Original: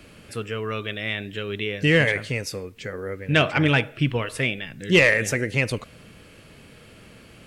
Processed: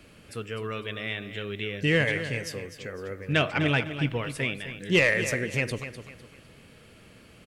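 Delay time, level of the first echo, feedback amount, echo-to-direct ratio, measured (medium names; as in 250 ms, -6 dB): 252 ms, -11.0 dB, 33%, -10.5 dB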